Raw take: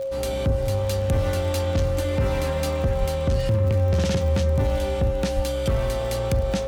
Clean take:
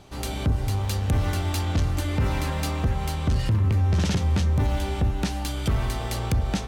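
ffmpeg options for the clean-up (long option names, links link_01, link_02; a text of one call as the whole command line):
ffmpeg -i in.wav -filter_complex "[0:a]adeclick=threshold=4,bandreject=frequency=540:width=30,asplit=3[link_01][link_02][link_03];[link_01]afade=type=out:start_time=2.99:duration=0.02[link_04];[link_02]highpass=frequency=140:width=0.5412,highpass=frequency=140:width=1.3066,afade=type=in:start_time=2.99:duration=0.02,afade=type=out:start_time=3.11:duration=0.02[link_05];[link_03]afade=type=in:start_time=3.11:duration=0.02[link_06];[link_04][link_05][link_06]amix=inputs=3:normalize=0,asplit=3[link_07][link_08][link_09];[link_07]afade=type=out:start_time=5.35:duration=0.02[link_10];[link_08]highpass=frequency=140:width=0.5412,highpass=frequency=140:width=1.3066,afade=type=in:start_time=5.35:duration=0.02,afade=type=out:start_time=5.47:duration=0.02[link_11];[link_09]afade=type=in:start_time=5.47:duration=0.02[link_12];[link_10][link_11][link_12]amix=inputs=3:normalize=0" out.wav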